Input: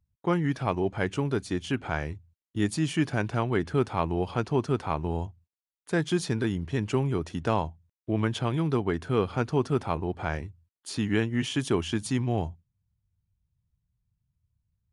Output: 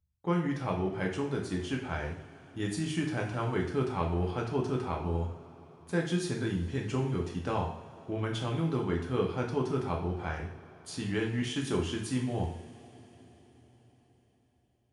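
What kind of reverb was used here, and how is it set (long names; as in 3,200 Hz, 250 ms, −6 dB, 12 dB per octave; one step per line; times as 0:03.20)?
coupled-rooms reverb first 0.54 s, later 4.9 s, from −21 dB, DRR −0.5 dB
level −7.5 dB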